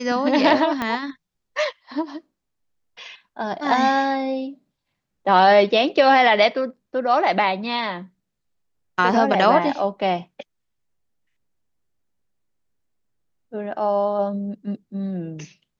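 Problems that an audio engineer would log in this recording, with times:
0.82 s: pop -11 dBFS

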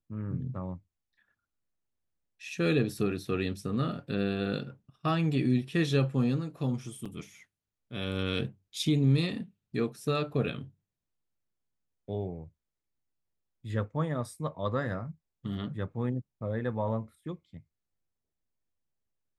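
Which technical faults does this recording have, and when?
7.05–7.06 s: dropout 5.8 ms

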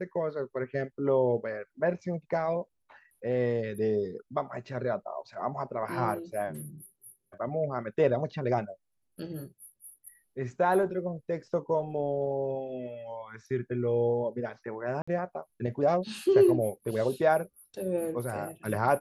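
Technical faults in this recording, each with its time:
15.02–15.07 s: dropout 55 ms

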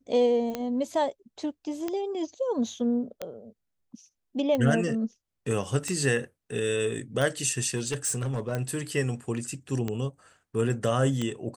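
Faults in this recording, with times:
tick 45 rpm -16 dBFS
0.50 s: pop -25 dBFS
7.75–8.53 s: clipped -24 dBFS

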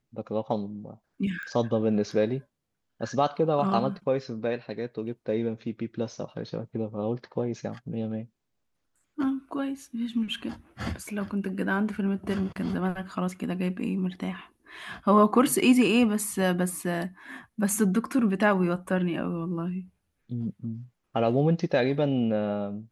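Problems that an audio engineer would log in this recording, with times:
1.43 s: pop -27 dBFS

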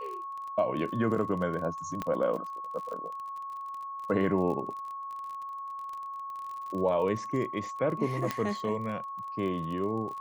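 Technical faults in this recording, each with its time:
crackle 34 per s -37 dBFS
whine 1.1 kHz -36 dBFS
2.02 s: pop -19 dBFS
8.31 s: pop -15 dBFS

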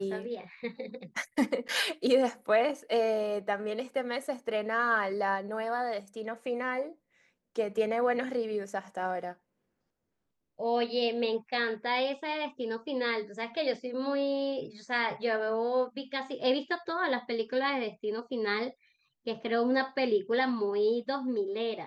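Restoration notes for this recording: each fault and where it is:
1.68–1.69 s: dropout 8.7 ms

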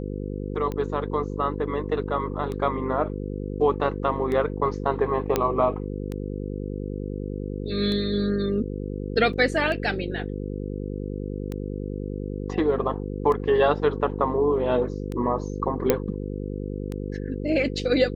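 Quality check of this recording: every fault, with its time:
buzz 50 Hz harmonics 10 -31 dBFS
tick 33 1/3 rpm -19 dBFS
5.36 s: pop -7 dBFS
9.33 s: dropout 3.3 ms
15.90 s: pop -5 dBFS

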